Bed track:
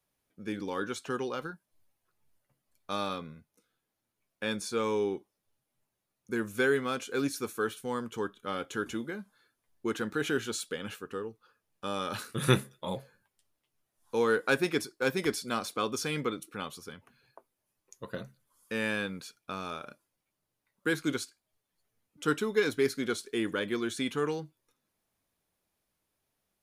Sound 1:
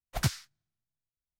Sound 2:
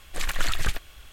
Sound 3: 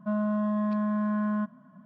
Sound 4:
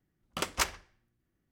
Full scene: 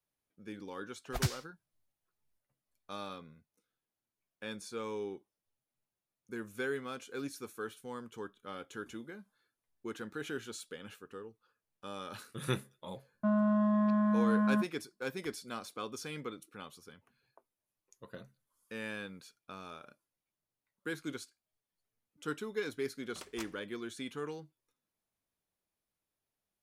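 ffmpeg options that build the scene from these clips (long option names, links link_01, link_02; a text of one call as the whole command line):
ffmpeg -i bed.wav -i cue0.wav -i cue1.wav -i cue2.wav -i cue3.wav -filter_complex "[0:a]volume=-9.5dB[link_01];[3:a]agate=range=-34dB:threshold=-43dB:ratio=16:release=100:detection=peak[link_02];[1:a]atrim=end=1.39,asetpts=PTS-STARTPTS,volume=-3.5dB,afade=type=in:duration=0.004:curve=hsin,afade=type=out:start_time=1.386:duration=0.004:curve=hsin,adelay=990[link_03];[link_02]atrim=end=1.85,asetpts=PTS-STARTPTS,volume=-1dB,afade=type=in:duration=0.004:curve=hsin,afade=type=out:start_time=1.846:duration=0.004:curve=hsin,adelay=13170[link_04];[4:a]atrim=end=1.51,asetpts=PTS-STARTPTS,volume=-17dB,afade=type=in:duration=0.004:curve=hsin,afade=type=out:start_time=1.506:duration=0.004:curve=hsin,adelay=22790[link_05];[link_01][link_03][link_04][link_05]amix=inputs=4:normalize=0" out.wav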